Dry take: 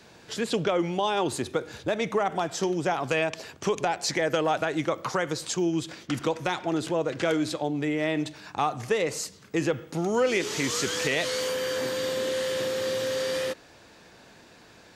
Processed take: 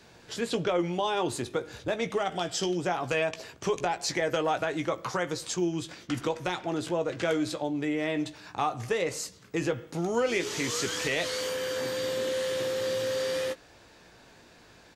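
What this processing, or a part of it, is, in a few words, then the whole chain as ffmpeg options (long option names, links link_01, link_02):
low shelf boost with a cut just above: -filter_complex "[0:a]asettb=1/sr,asplit=3[link_01][link_02][link_03];[link_01]atrim=end=2.104[link_04];[link_02]atrim=start=2.1:end=2.77,asetpts=PTS-STARTPTS,afade=type=in:duration=0.004:curve=qsin,afade=type=out:start_time=0.666:duration=0.004:curve=qsin,equalizer=frequency=1000:width_type=o:width=0.33:gain=-7,equalizer=frequency=3150:width_type=o:width=0.33:gain=10,equalizer=frequency=5000:width_type=o:width=0.33:gain=7,equalizer=frequency=8000:width_type=o:width=0.33:gain=5[link_05];[link_03]atrim=start=2.766[link_06];[link_04][link_05]acrossfade=duration=0.004:curve1=hsin:curve2=qsin[link_07];[link_07][link_06]acrossfade=duration=0.004:curve1=qsin:curve2=hsin,lowshelf=frequency=62:gain=8,equalizer=frequency=200:width_type=o:width=0.77:gain=-2,asplit=2[link_08][link_09];[link_09]adelay=17,volume=-9dB[link_10];[link_08][link_10]amix=inputs=2:normalize=0,volume=-3dB"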